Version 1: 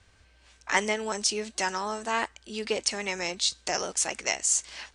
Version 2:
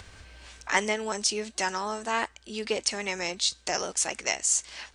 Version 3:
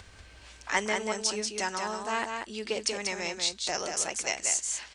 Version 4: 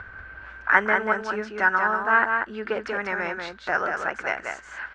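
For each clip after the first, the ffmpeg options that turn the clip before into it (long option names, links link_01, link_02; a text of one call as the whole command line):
ffmpeg -i in.wav -af "acompressor=mode=upward:threshold=-37dB:ratio=2.5" out.wav
ffmpeg -i in.wav -af "aecho=1:1:188:0.562,volume=-3dB" out.wav
ffmpeg -i in.wav -af "lowpass=frequency=1500:width_type=q:width=7.4,volume=4dB" out.wav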